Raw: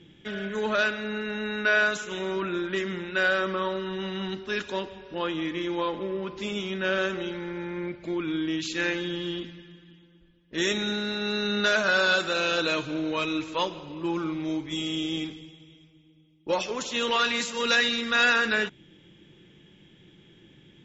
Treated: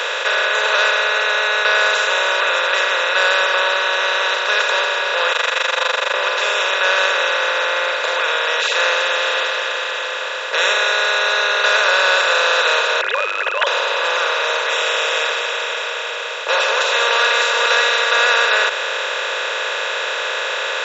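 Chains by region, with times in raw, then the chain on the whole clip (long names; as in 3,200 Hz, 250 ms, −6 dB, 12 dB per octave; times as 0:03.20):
0:05.32–0:06.14: high-pass filter 1,200 Hz + amplitude modulation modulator 24 Hz, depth 90% + leveller curve on the samples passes 1
0:13.01–0:13.67: three sine waves on the formant tracks + tilt shelving filter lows −3 dB, about 1,200 Hz
whole clip: compressor on every frequency bin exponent 0.2; elliptic high-pass filter 460 Hz, stop band 40 dB; level +1 dB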